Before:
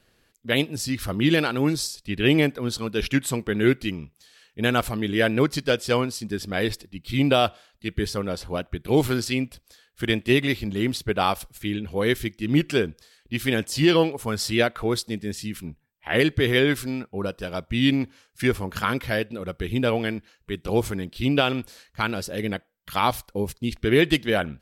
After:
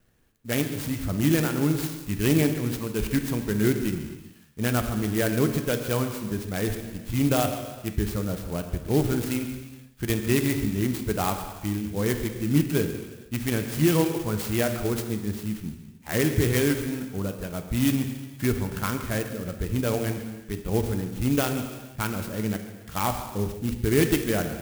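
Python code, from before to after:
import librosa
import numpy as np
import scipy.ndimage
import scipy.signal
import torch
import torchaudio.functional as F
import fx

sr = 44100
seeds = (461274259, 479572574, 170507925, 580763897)

p1 = fx.bass_treble(x, sr, bass_db=7, treble_db=3)
p2 = fx.rev_gated(p1, sr, seeds[0], gate_ms=500, shape='falling', drr_db=6.0)
p3 = fx.vibrato(p2, sr, rate_hz=2.2, depth_cents=23.0)
p4 = fx.high_shelf(p3, sr, hz=8900.0, db=-11.0)
p5 = p4 + fx.echo_single(p4, sr, ms=139, db=-16.0, dry=0)
p6 = fx.clock_jitter(p5, sr, seeds[1], jitter_ms=0.064)
y = F.gain(torch.from_numpy(p6), -5.5).numpy()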